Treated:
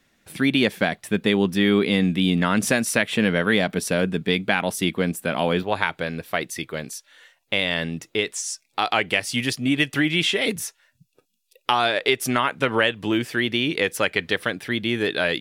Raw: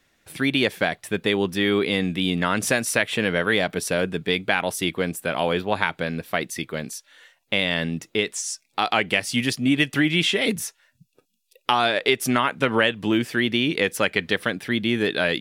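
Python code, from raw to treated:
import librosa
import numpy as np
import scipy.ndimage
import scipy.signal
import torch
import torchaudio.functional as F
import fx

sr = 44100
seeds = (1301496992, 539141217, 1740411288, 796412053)

y = fx.peak_eq(x, sr, hz=210.0, db=fx.steps((0.0, 7.0), (5.63, -4.0)), octaves=0.65)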